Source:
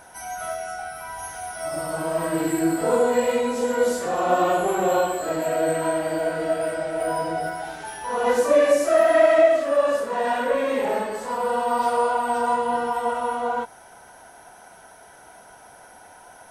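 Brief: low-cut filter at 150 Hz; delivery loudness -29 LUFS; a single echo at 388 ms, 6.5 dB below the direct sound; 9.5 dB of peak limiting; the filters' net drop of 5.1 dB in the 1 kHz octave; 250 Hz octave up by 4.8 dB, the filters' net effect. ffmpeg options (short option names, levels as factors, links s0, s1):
-af "highpass=150,equalizer=f=250:t=o:g=7.5,equalizer=f=1000:t=o:g=-8,alimiter=limit=0.158:level=0:latency=1,aecho=1:1:388:0.473,volume=0.631"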